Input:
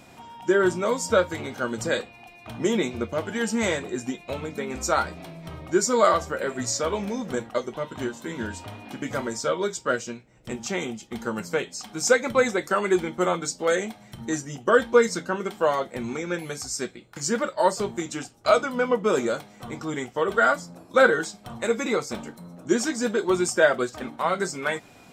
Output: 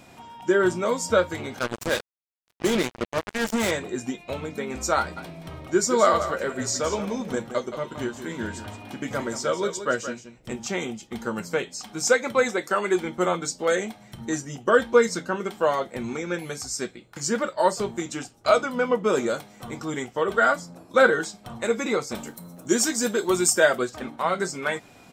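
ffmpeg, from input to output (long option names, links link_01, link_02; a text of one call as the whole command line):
ffmpeg -i in.wav -filter_complex "[0:a]asettb=1/sr,asplit=3[link_01][link_02][link_03];[link_01]atrim=end=1.594[link_04];[link_02]atrim=start=1.59:end=3.71,asetpts=PTS-STARTPTS,afade=type=in:duration=0.004:curve=qsin,afade=type=out:start_time=2.116:duration=0.004:curve=qsin,acrusher=bits=3:mix=0:aa=0.5[link_05];[link_03]atrim=start=3.706[link_06];[link_04][link_05]acrossfade=duration=0.004:curve1=hsin:curve2=qsin[link_07];[link_07][link_06]acrossfade=duration=0.004:curve1=qsin:curve2=hsin,asplit=3[link_08][link_09][link_10];[link_08]afade=type=out:start_time=5.16:duration=0.02[link_11];[link_09]aecho=1:1:173:0.299,afade=type=in:start_time=5.16:duration=0.02,afade=type=out:start_time=10.53:duration=0.02[link_12];[link_10]afade=type=in:start_time=10.53:duration=0.02[link_13];[link_11][link_12][link_13]amix=inputs=3:normalize=0,asettb=1/sr,asplit=3[link_14][link_15][link_16];[link_14]atrim=end=12.084[link_17];[link_15]atrim=start=12.08:end=13.05,asetpts=PTS-STARTPTS,afade=type=in:duration=0.004:curve=qsin,afade=type=out:start_time=0.966:duration=0.004:curve=qsin,highpass=frequency=220:poles=1[link_18];[link_16]atrim=start=13.046[link_19];[link_17][link_18]acrossfade=duration=0.004:curve1=hsin:curve2=qsin[link_20];[link_20][link_19]acrossfade=duration=0.004:curve1=qsin:curve2=hsin,asettb=1/sr,asplit=3[link_21][link_22][link_23];[link_21]atrim=end=19.294[link_24];[link_22]atrim=start=19.29:end=20.03,asetpts=PTS-STARTPTS,afade=type=in:duration=0.004:curve=qsin,afade=type=out:start_time=0.736:duration=0.004:curve=qsin,highshelf=frequency=7800:gain=5.5[link_25];[link_23]atrim=start=20.026[link_26];[link_24][link_25]acrossfade=duration=0.004:curve1=hsin:curve2=qsin[link_27];[link_27][link_26]acrossfade=duration=0.004:curve1=qsin:curve2=hsin,asettb=1/sr,asplit=3[link_28][link_29][link_30];[link_28]atrim=end=22.154[link_31];[link_29]atrim=start=22.15:end=23.79,asetpts=PTS-STARTPTS,afade=type=in:duration=0.004:curve=qsin,afade=type=out:start_time=1.636:duration=0.004:curve=qsin,aemphasis=mode=production:type=50fm[link_32];[link_30]atrim=start=23.786[link_33];[link_31][link_32]acrossfade=duration=0.004:curve1=hsin:curve2=qsin[link_34];[link_34][link_33]acrossfade=duration=0.004:curve1=qsin:curve2=hsin" out.wav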